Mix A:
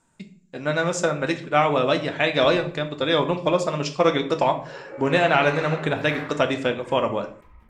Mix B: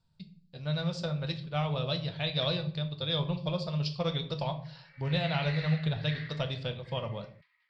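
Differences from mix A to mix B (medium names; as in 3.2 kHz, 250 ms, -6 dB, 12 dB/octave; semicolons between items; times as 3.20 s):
background: add resonant high-pass 1.9 kHz, resonance Q 7.1; master: add FFT filter 160 Hz 0 dB, 280 Hz -23 dB, 510 Hz -14 dB, 2 kHz -19 dB, 4.6 kHz +2 dB, 6.6 kHz -25 dB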